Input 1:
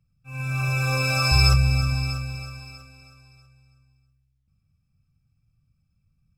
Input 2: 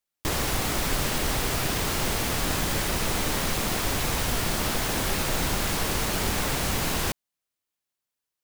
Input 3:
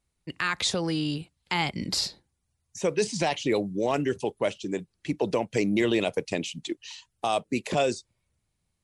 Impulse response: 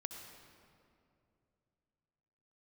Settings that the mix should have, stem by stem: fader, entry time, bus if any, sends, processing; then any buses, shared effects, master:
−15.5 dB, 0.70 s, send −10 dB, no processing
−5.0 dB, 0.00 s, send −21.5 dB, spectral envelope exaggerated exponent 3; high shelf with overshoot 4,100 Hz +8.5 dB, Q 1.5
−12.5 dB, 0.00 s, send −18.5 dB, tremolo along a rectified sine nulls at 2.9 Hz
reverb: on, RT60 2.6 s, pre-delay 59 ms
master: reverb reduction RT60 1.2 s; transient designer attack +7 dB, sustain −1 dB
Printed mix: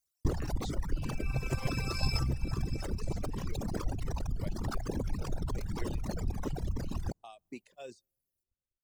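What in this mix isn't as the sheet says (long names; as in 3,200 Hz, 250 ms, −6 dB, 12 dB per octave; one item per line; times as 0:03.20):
stem 3 −12.5 dB → −21.0 dB
reverb return −7.0 dB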